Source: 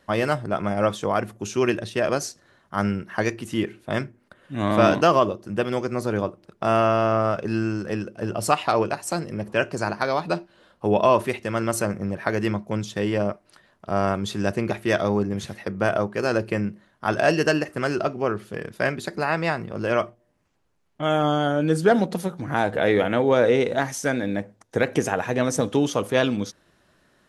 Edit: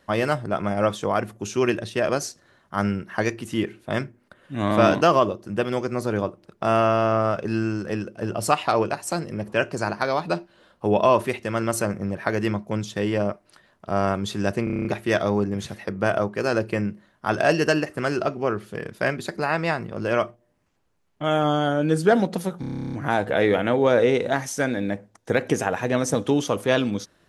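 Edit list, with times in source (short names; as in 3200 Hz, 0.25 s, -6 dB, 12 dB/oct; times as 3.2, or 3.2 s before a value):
14.64 stutter 0.03 s, 8 plays
22.39 stutter 0.03 s, 12 plays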